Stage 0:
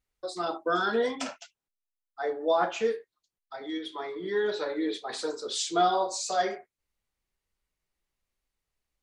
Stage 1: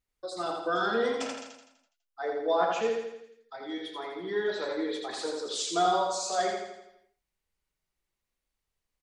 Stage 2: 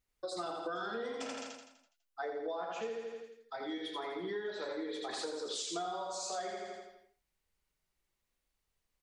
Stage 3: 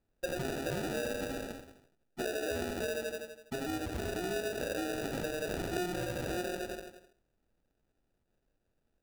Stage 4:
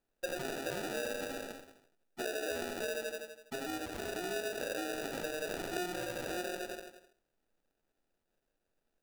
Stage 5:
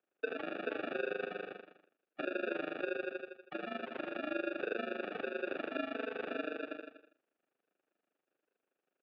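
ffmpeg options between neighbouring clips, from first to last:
-af "aecho=1:1:83|166|249|332|415|498|581:0.631|0.328|0.171|0.0887|0.0461|0.024|0.0125,volume=-2.5dB"
-af "acompressor=threshold=-37dB:ratio=10,volume=1dB"
-filter_complex "[0:a]asplit=2[a][b];[b]alimiter=level_in=11dB:limit=-24dB:level=0:latency=1,volume=-11dB,volume=-2dB[c];[a][c]amix=inputs=2:normalize=0,acrusher=samples=41:mix=1:aa=0.000001"
-af "equalizer=f=68:w=0.35:g=-13"
-af "highpass=f=360:t=q:w=0.5412,highpass=f=360:t=q:w=1.307,lowpass=f=3.2k:t=q:w=0.5176,lowpass=f=3.2k:t=q:w=0.7071,lowpass=f=3.2k:t=q:w=1.932,afreqshift=-79,tremolo=f=25:d=0.857,volume=4.5dB"

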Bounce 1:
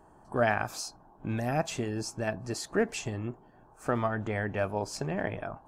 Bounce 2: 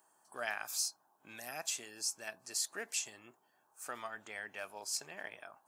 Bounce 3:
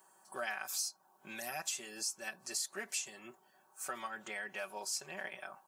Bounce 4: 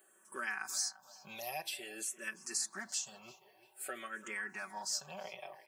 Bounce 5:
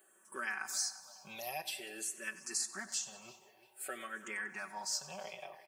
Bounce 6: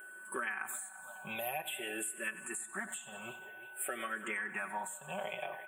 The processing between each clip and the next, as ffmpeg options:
-af "highpass=110,aderivative,volume=4.5dB"
-af "aecho=1:1:5.3:0.9,acompressor=threshold=-43dB:ratio=2,volume=3dB"
-filter_complex "[0:a]asplit=2[a][b];[b]adelay=343,lowpass=f=4k:p=1,volume=-17dB,asplit=2[c][d];[d]adelay=343,lowpass=f=4k:p=1,volume=0.42,asplit=2[e][f];[f]adelay=343,lowpass=f=4k:p=1,volume=0.42,asplit=2[g][h];[h]adelay=343,lowpass=f=4k:p=1,volume=0.42[i];[a][c][e][g][i]amix=inputs=5:normalize=0,asplit=2[j][k];[k]afreqshift=-0.51[l];[j][l]amix=inputs=2:normalize=1,volume=2.5dB"
-af "aecho=1:1:94|188|282|376|470:0.15|0.0853|0.0486|0.0277|0.0158"
-af "aeval=exprs='val(0)+0.00141*sin(2*PI*1500*n/s)':c=same,acompressor=threshold=-43dB:ratio=6,asuperstop=centerf=5200:order=8:qfactor=1.2,volume=8.5dB"

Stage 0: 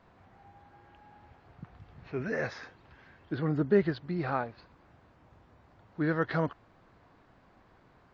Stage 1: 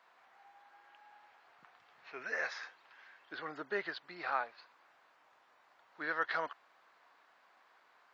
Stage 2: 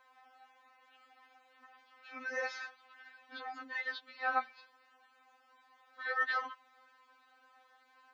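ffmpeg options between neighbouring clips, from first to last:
-af "highpass=970,volume=1dB"
-af "afftfilt=real='re*3.46*eq(mod(b,12),0)':imag='im*3.46*eq(mod(b,12),0)':win_size=2048:overlap=0.75,volume=3.5dB"

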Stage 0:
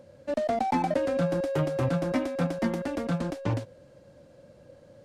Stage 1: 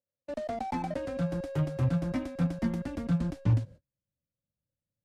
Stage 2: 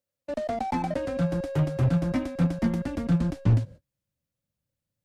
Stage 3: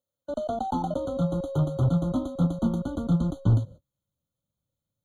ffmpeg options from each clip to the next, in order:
-af "asubboost=boost=7:cutoff=190,agate=range=-38dB:threshold=-38dB:ratio=16:detection=peak,volume=-7dB"
-af "aeval=exprs='clip(val(0),-1,0.0708)':c=same,volume=5dB"
-af "afftfilt=real='re*eq(mod(floor(b*sr/1024/1500),2),0)':imag='im*eq(mod(floor(b*sr/1024/1500),2),0)':win_size=1024:overlap=0.75"

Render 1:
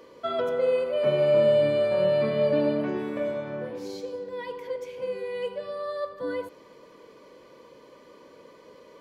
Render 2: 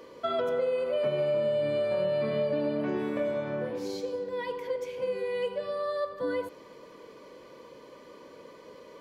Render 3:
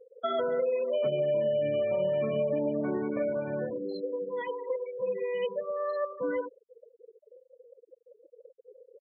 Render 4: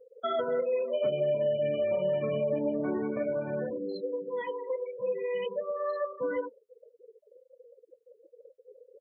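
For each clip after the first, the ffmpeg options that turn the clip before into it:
-af "acompressor=threshold=-27dB:ratio=6,volume=1.5dB"
-af "afftfilt=real='re*gte(hypot(re,im),0.0251)':imag='im*gte(hypot(re,im),0.0251)':win_size=1024:overlap=0.75"
-af "flanger=delay=3.2:depth=8.1:regen=-50:speed=0.53:shape=triangular,volume=3.5dB"

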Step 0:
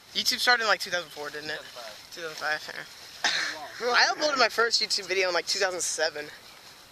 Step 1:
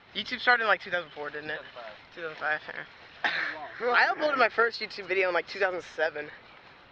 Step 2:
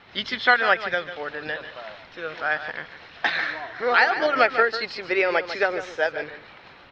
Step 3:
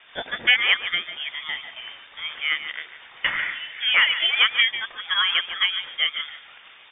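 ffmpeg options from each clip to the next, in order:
-af "lowpass=f=3.1k:w=0.5412,lowpass=f=3.1k:w=1.3066"
-af "aecho=1:1:147:0.266,volume=4.5dB"
-af "lowpass=f=3.1k:t=q:w=0.5098,lowpass=f=3.1k:t=q:w=0.6013,lowpass=f=3.1k:t=q:w=0.9,lowpass=f=3.1k:t=q:w=2.563,afreqshift=-3700"

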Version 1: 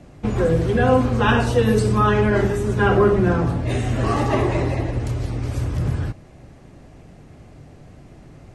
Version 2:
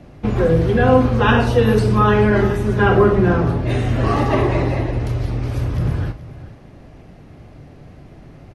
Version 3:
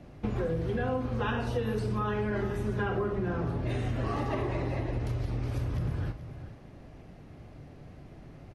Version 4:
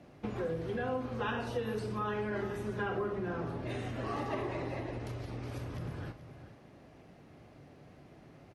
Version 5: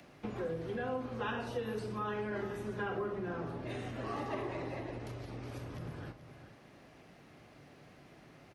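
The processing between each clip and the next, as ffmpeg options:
-filter_complex "[0:a]equalizer=f=7.7k:t=o:w=0.6:g=-11,asplit=2[a][b];[b]aecho=0:1:43|428:0.237|0.141[c];[a][c]amix=inputs=2:normalize=0,volume=2.5dB"
-af "acompressor=threshold=-20dB:ratio=6,volume=-7.5dB"
-af "highpass=f=220:p=1,volume=-2.5dB"
-filter_complex "[0:a]equalizer=f=77:t=o:w=1.1:g=-4.5,acrossover=split=360|1100[a][b][c];[c]acompressor=mode=upward:threshold=-55dB:ratio=2.5[d];[a][b][d]amix=inputs=3:normalize=0,volume=-2dB"

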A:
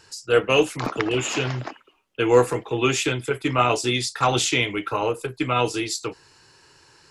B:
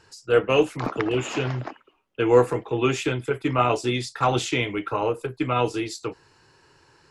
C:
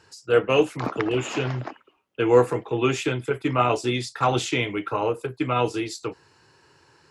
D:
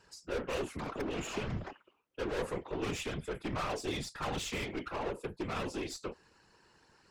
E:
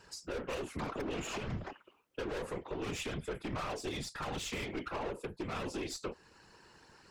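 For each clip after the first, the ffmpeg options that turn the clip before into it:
-af "highshelf=f=2.7k:g=-10"
-af "highpass=65"
-af "aeval=exprs='(tanh(22.4*val(0)+0.4)-tanh(0.4))/22.4':c=same,afftfilt=real='hypot(re,im)*cos(2*PI*random(0))':imag='hypot(re,im)*sin(2*PI*random(1))':win_size=512:overlap=0.75"
-af "alimiter=level_in=9.5dB:limit=-24dB:level=0:latency=1:release=369,volume=-9.5dB,volume=5dB"

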